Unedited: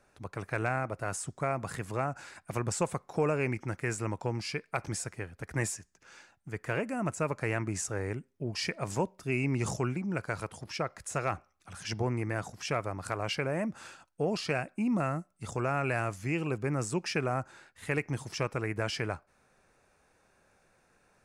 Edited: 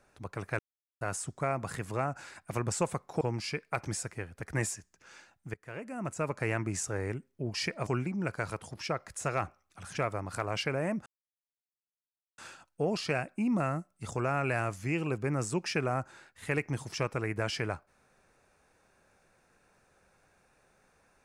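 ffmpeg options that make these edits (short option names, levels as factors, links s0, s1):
-filter_complex "[0:a]asplit=8[s0][s1][s2][s3][s4][s5][s6][s7];[s0]atrim=end=0.59,asetpts=PTS-STARTPTS,afade=t=out:st=0.586:d=0.004:c=hsin[s8];[s1]atrim=start=0.59:end=1.01,asetpts=PTS-STARTPTS,volume=0[s9];[s2]atrim=start=1.01:end=3.212,asetpts=PTS-STARTPTS,afade=t=in:d=0.004:c=hsin[s10];[s3]atrim=start=4.218:end=6.55,asetpts=PTS-STARTPTS,afade=t=out:st=2.328:d=0.004:c=hsin:silence=0.0891251[s11];[s4]atrim=start=6.55:end=8.882,asetpts=PTS-STARTPTS,afade=t=in:d=0.86:silence=0.0891251[s12];[s5]atrim=start=9.768:end=11.872[s13];[s6]atrim=start=12.688:end=13.78,asetpts=PTS-STARTPTS,afade=t=out:st=1.088:d=0.004:c=hsin,apad=pad_dur=1.32[s14];[s7]atrim=start=13.78,asetpts=PTS-STARTPTS,afade=t=in:d=0.004:c=hsin[s15];[s8][s9][s10]concat=n=3:v=0:a=1[s16];[s11][s12]concat=n=2:v=0:a=1[s17];[s16][s17]acrossfade=d=0.004:c1=hsin:c2=hsin[s18];[s18][s13]acrossfade=d=0.004:c1=hsin:c2=hsin[s19];[s14][s15]concat=n=2:v=0:a=1[s20];[s19][s20]acrossfade=d=0.004:c1=hsin:c2=hsin"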